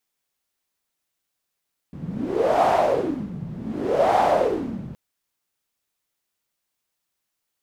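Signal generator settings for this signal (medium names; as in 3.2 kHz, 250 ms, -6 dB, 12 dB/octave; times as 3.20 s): wind-like swept noise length 3.02 s, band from 160 Hz, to 740 Hz, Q 5.5, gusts 2, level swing 15 dB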